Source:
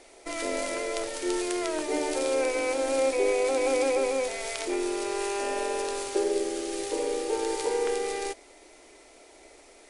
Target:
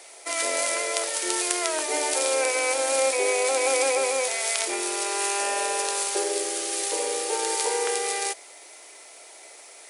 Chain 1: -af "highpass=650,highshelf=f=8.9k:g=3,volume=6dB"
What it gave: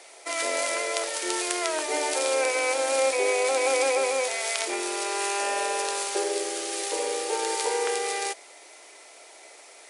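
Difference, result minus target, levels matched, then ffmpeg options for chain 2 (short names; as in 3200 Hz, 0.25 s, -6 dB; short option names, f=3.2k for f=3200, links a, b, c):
8000 Hz band -2.5 dB
-af "highpass=650,highshelf=f=8.9k:g=13,volume=6dB"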